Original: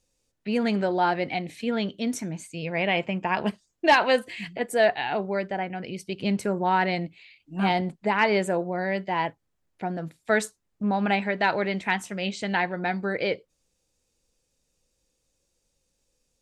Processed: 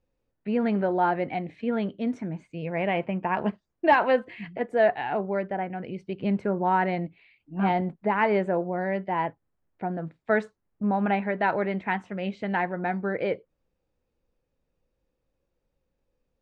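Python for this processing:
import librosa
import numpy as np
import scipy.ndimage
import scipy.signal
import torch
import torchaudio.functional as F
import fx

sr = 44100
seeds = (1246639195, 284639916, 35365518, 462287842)

y = scipy.signal.sosfilt(scipy.signal.butter(2, 1700.0, 'lowpass', fs=sr, output='sos'), x)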